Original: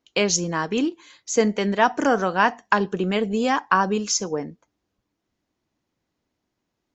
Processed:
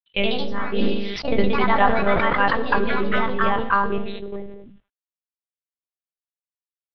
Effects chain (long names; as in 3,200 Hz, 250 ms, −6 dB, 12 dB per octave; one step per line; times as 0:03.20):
spectral dynamics exaggerated over time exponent 1.5
low-shelf EQ 170 Hz +2.5 dB
in parallel at −1 dB: downward compressor 6 to 1, threshold −44 dBFS, peak gain reduction 27 dB
on the sum: log-companded quantiser 6 bits
reverb whose tail is shaped and stops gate 270 ms falling, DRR 8.5 dB
one-pitch LPC vocoder at 8 kHz 200 Hz
delay with pitch and tempo change per echo 90 ms, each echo +2 semitones, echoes 3
level that may fall only so fast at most 49 dB per second